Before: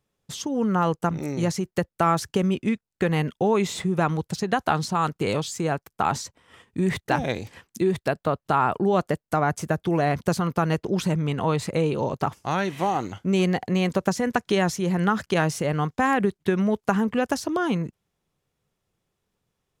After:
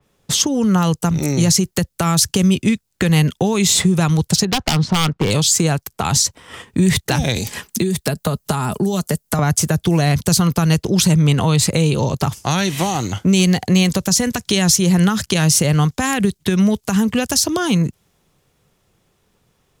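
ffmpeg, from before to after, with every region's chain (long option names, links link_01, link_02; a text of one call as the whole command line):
ffmpeg -i in.wav -filter_complex "[0:a]asettb=1/sr,asplit=3[link_01][link_02][link_03];[link_01]atrim=end=4.454[link_04];[link_02]atrim=start=4.45:end=5.31,asetpts=PTS-STARTPTS,afade=type=in:duration=0.004:curve=qsin,afade=type=out:start_time=0.856:duration=0.004:curve=qsin,lowpass=2100,aeval=exprs='0.106*(abs(mod(val(0)/0.106+3,4)-2)-1)':channel_layout=same[link_05];[link_03]atrim=start=5.306[link_06];[link_04][link_05]acrossfade=duration=0.004:curve1=hsin:curve2=qsin[link_07];[link_07][link_06]acrossfade=duration=0.004:curve1=qsin:curve2=hsin,asettb=1/sr,asplit=3[link_08][link_09][link_10];[link_08]atrim=end=7.364[link_11];[link_09]atrim=start=7.36:end=9.39,asetpts=PTS-STARTPTS,afade=type=in:duration=0.004:curve=qsin,afade=type=out:start_time=2.026:duration=0.004:curve=qsin,aecho=1:1:4.8:0.4,atrim=end_sample=89523,acrossover=split=270|4600[link_12][link_13][link_14];[link_12]acompressor=threshold=-30dB:ratio=4[link_15];[link_13]acompressor=threshold=-32dB:ratio=4[link_16];[link_14]acompressor=threshold=-51dB:ratio=4[link_17];[link_15][link_16][link_17]amix=inputs=3:normalize=0,highshelf=frequency=6300:gain=9[link_18];[link_10]atrim=start=9.386[link_19];[link_11][link_18]acrossfade=duration=0.004:curve1=hsin:curve2=qsin[link_20];[link_20][link_19]acrossfade=duration=0.004:curve1=qsin:curve2=hsin,acrossover=split=160|3000[link_21][link_22][link_23];[link_22]acompressor=threshold=-35dB:ratio=6[link_24];[link_21][link_24][link_23]amix=inputs=3:normalize=0,alimiter=level_in=20dB:limit=-1dB:release=50:level=0:latency=1,adynamicequalizer=threshold=0.0316:dfrequency=3900:dqfactor=0.7:tfrequency=3900:tqfactor=0.7:attack=5:release=100:ratio=0.375:range=2.5:mode=boostabove:tftype=highshelf,volume=-4.5dB" out.wav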